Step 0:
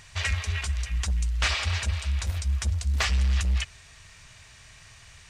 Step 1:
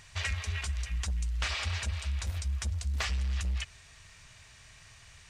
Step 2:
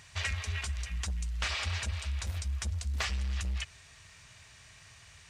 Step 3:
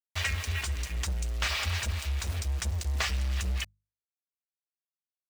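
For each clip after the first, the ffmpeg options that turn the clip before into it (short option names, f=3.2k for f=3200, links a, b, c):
-af "acompressor=threshold=-24dB:ratio=6,volume=-4dB"
-af "highpass=57"
-af "aeval=exprs='val(0)*gte(abs(val(0)),0.00891)':c=same,bandreject=f=50:t=h:w=6,bandreject=f=100:t=h:w=6,bandreject=f=150:t=h:w=6,bandreject=f=200:t=h:w=6,volume=3.5dB"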